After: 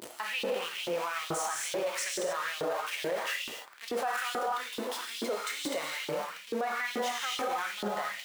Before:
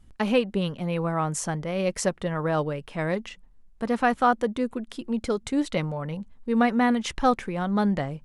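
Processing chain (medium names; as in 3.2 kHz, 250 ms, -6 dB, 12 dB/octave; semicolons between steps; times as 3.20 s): jump at every zero crossing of -25 dBFS; gated-style reverb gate 310 ms flat, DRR -1 dB; LFO high-pass saw up 2.3 Hz 330–3700 Hz; peak limiter -15 dBFS, peak gain reduction 11 dB; trim -8.5 dB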